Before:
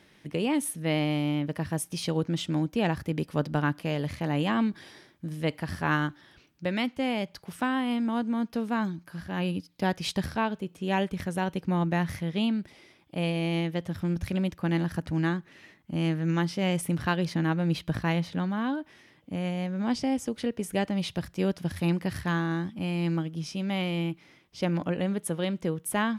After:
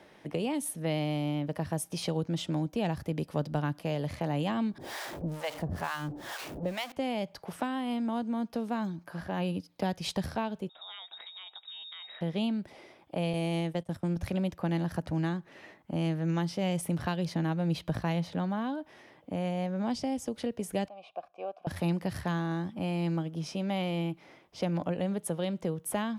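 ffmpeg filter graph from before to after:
-filter_complex "[0:a]asettb=1/sr,asplit=3[s0][s1][s2];[s0]atrim=end=4.784[s3];[s1]atrim=start=4.78:end=6.92,asetpts=PTS-STARTPTS,afade=t=in:d=0.004:c=qsin,afade=t=out:st=2.136:d=0.004:c=qsin,aeval=exprs='val(0)+0.5*0.0251*sgn(val(0))':c=same,deesser=0.35,acrossover=split=630[s4][s5];[s4]aeval=exprs='val(0)*(1-1/2+1/2*cos(2*PI*2.2*n/s))':c=same[s6];[s5]aeval=exprs='val(0)*(1-1/2-1/2*cos(2*PI*2.2*n/s))':c=same[s7];[s6][s7]amix=inputs=2:normalize=0[s8];[s2]atrim=start=6.916[s9];[s3][s8]acrossfade=d=0.004:c1=hsin:c2=qsin[s10];[s10][s9]acrossfade=d=0.004:c1=qsin:c2=hsin,asettb=1/sr,asplit=3[s11][s12][s13];[s11]atrim=end=10.694[s14];[s12]atrim=start=10.69:end=12.21,asetpts=PTS-STARTPTS,afade=t=in:d=0.004:c=qsin,afade=t=out:st=1.516:d=0.004:c=qsin,lowpass=f=3300:t=q:w=0.5098,lowpass=f=3300:t=q:w=0.6013,lowpass=f=3300:t=q:w=0.9,lowpass=f=3300:t=q:w=2.563,afreqshift=-3900,acompressor=threshold=0.00708:ratio=5:attack=3.2:release=140:knee=1:detection=peak[s15];[s13]atrim=start=12.206[s16];[s14][s15]acrossfade=d=0.004:c1=hsin:c2=qsin[s17];[s17][s16]acrossfade=d=0.004:c1=qsin:c2=hsin,asettb=1/sr,asplit=3[s18][s19][s20];[s18]atrim=end=13.334[s21];[s19]atrim=start=13.33:end=14.08,asetpts=PTS-STARTPTS,afade=t=in:d=0.004:c=qsin,afade=t=out:st=0.746:d=0.004:c=qsin,agate=range=0.126:threshold=0.0141:ratio=16:release=100:detection=peak,equalizer=f=8700:w=2.6:g=14[s22];[s20]atrim=start=14.076[s23];[s21][s22]acrossfade=d=0.004:c1=hsin:c2=qsin[s24];[s24][s23]acrossfade=d=0.004:c1=qsin:c2=hsin,asettb=1/sr,asplit=3[s25][s26][s27];[s25]atrim=end=20.884[s28];[s26]atrim=start=20.88:end=21.67,asetpts=PTS-STARTPTS,afade=t=in:d=0.004:c=qsin,afade=t=out:st=0.786:d=0.004:c=qsin,asplit=3[s29][s30][s31];[s29]bandpass=f=730:t=q:w=8,volume=1[s32];[s30]bandpass=f=1090:t=q:w=8,volume=0.501[s33];[s31]bandpass=f=2440:t=q:w=8,volume=0.355[s34];[s32][s33][s34]amix=inputs=3:normalize=0,equalizer=f=120:t=o:w=1.5:g=-8.5,bandreject=f=1300:w=17[s35];[s27]atrim=start=21.666[s36];[s28][s35]acrossfade=d=0.004:c1=hsin:c2=qsin[s37];[s37][s36]acrossfade=d=0.004:c1=qsin:c2=hsin,acrossover=split=210|3000[s38][s39][s40];[s39]acompressor=threshold=0.01:ratio=4[s41];[s38][s41][s40]amix=inputs=3:normalize=0,equalizer=f=670:t=o:w=1.9:g=13,volume=0.708"

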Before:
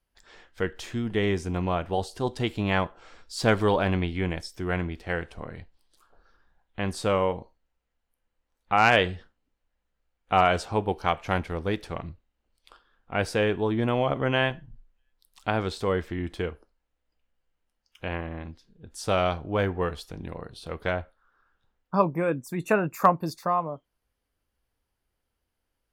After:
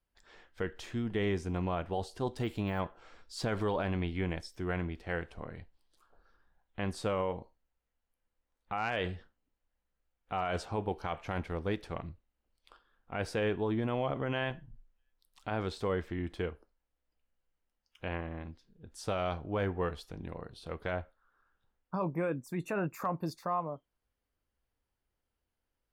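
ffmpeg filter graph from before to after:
-filter_complex "[0:a]asettb=1/sr,asplit=3[s0][s1][s2];[s0]atrim=end=2.364[s3];[s1]atrim=start=2.36:end=2.8,asetpts=PTS-STARTPTS,afade=t=in:d=0.004:c=qsin,afade=t=out:st=0.436:d=0.004:c=qsin,deesser=1,highshelf=f=9700:g=11[s4];[s2]atrim=start=2.796[s5];[s3][s4]acrossfade=d=0.004:c1=hsin:c2=qsin[s6];[s6][s5]acrossfade=d=0.004:c1=qsin:c2=hsin,highshelf=f=4100:g=-5,alimiter=limit=0.126:level=0:latency=1:release=37,volume=0.562"

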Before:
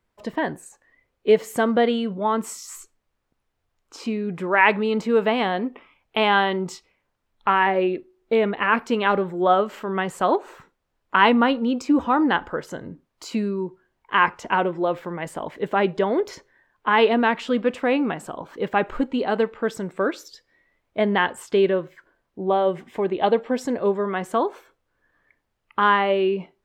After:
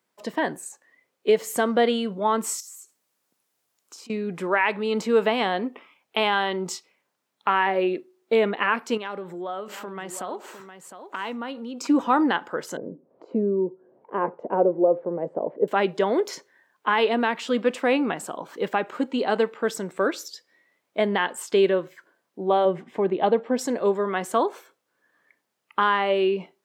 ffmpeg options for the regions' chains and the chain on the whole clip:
-filter_complex "[0:a]asettb=1/sr,asplit=3[s0][s1][s2];[s0]atrim=end=2.604[s3];[s1]atrim=start=2.6:end=4.1,asetpts=PTS-STARTPTS,afade=t=in:d=0.004:c=qsin,afade=t=out:st=1.496:d=0.004:c=qsin,aemphasis=mode=production:type=cd,acompressor=threshold=0.00501:ratio=12:attack=3.2:release=140:knee=1:detection=peak[s4];[s2]atrim=start=4.096[s5];[s3][s4]acrossfade=d=0.004:c1=hsin:c2=qsin[s6];[s6][s5]acrossfade=d=0.004:c1=qsin:c2=hsin,asettb=1/sr,asplit=3[s7][s8][s9];[s7]atrim=end=8.974[s10];[s8]atrim=start=8.97:end=11.87,asetpts=PTS-STARTPTS,afade=t=in:d=0.004:c=qsin,afade=t=out:st=2.896:d=0.004:c=qsin,acompressor=threshold=0.0224:ratio=3:attack=3.2:release=140:knee=1:detection=peak,aecho=1:1:709:0.316,atrim=end_sample=127890[s11];[s9]atrim=start=11.866[s12];[s10][s11]acrossfade=d=0.004:c1=hsin:c2=qsin[s13];[s13][s12]acrossfade=d=0.004:c1=qsin:c2=hsin,asettb=1/sr,asplit=3[s14][s15][s16];[s14]atrim=end=12.774[s17];[s15]atrim=start=12.77:end=15.68,asetpts=PTS-STARTPTS,afade=t=in:d=0.004:c=qsin,afade=t=out:st=2.906:d=0.004:c=qsin,lowpass=f=530:t=q:w=2.6,acompressor=mode=upward:threshold=0.01:ratio=2.5:attack=3.2:release=140:knee=2.83:detection=peak[s18];[s16]atrim=start=15.676[s19];[s17][s18]acrossfade=d=0.004:c1=hsin:c2=qsin[s20];[s20][s19]acrossfade=d=0.004:c1=qsin:c2=hsin,asettb=1/sr,asplit=3[s21][s22][s23];[s21]atrim=end=22.654[s24];[s22]atrim=start=22.65:end=23.59,asetpts=PTS-STARTPTS,afade=t=in:d=0.004:c=qsin,afade=t=out:st=0.936:d=0.004:c=qsin,lowpass=f=1800:p=1,equalizer=f=88:w=0.73:g=10[s25];[s23]atrim=start=23.586[s26];[s24][s25]acrossfade=d=0.004:c1=hsin:c2=qsin[s27];[s27][s26]acrossfade=d=0.004:c1=qsin:c2=hsin,highpass=f=150:w=0.5412,highpass=f=150:w=1.3066,bass=f=250:g=-4,treble=f=4000:g=7,alimiter=limit=0.335:level=0:latency=1:release=313"

